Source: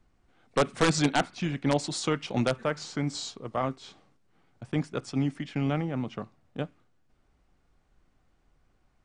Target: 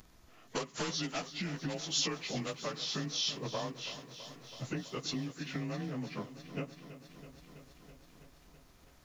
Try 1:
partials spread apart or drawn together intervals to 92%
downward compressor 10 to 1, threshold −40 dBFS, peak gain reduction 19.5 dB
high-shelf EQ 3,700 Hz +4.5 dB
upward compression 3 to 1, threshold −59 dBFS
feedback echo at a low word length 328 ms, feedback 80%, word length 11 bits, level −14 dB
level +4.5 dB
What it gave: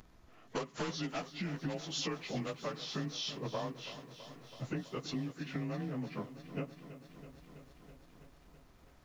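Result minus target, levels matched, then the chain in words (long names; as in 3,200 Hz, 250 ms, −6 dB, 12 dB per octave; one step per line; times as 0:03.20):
8,000 Hz band −5.5 dB
partials spread apart or drawn together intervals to 92%
downward compressor 10 to 1, threshold −40 dBFS, peak gain reduction 19.5 dB
high-shelf EQ 3,700 Hz +15.5 dB
upward compression 3 to 1, threshold −59 dBFS
feedback echo at a low word length 328 ms, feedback 80%, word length 11 bits, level −14 dB
level +4.5 dB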